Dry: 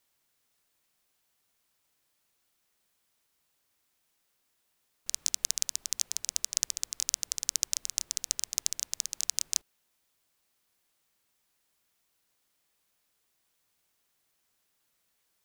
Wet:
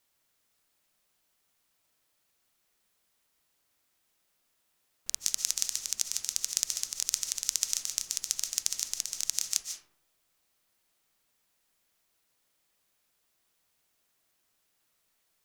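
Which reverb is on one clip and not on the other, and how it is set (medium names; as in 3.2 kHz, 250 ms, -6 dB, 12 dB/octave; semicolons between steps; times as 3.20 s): algorithmic reverb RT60 0.75 s, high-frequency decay 0.4×, pre-delay 105 ms, DRR 5.5 dB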